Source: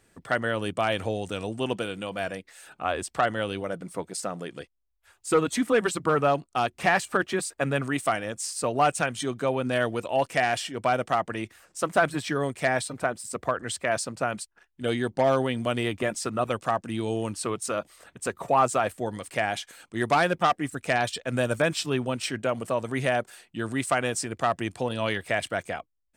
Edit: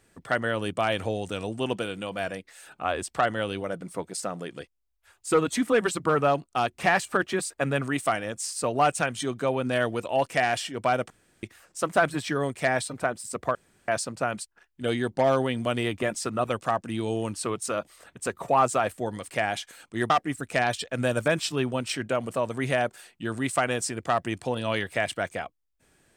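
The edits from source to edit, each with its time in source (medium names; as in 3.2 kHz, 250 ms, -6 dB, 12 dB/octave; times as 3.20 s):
11.10–11.43 s: room tone
13.55–13.88 s: room tone
20.10–20.44 s: delete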